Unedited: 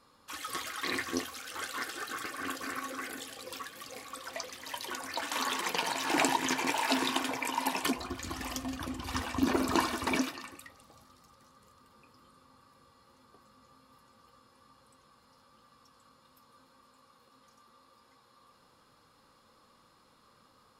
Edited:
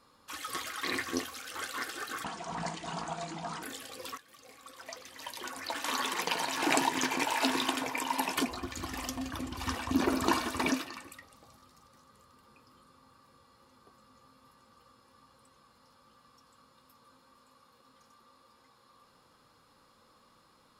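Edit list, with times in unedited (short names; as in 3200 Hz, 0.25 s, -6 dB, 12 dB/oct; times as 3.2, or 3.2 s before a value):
2.24–3.1 speed 62%
3.65–5.39 fade in, from -13.5 dB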